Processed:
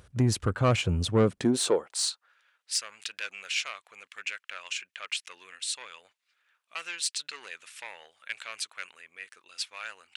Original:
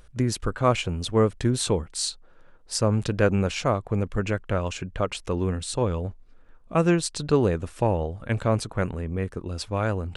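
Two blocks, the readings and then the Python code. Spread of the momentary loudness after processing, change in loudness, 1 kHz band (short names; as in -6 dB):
19 LU, -4.5 dB, -8.5 dB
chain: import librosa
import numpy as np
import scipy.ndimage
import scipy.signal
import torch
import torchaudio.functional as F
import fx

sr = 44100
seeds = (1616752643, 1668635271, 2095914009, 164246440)

y = 10.0 ** (-17.0 / 20.0) * np.tanh(x / 10.0 ** (-17.0 / 20.0))
y = fx.filter_sweep_highpass(y, sr, from_hz=86.0, to_hz=2300.0, start_s=1.07, end_s=2.41, q=1.5)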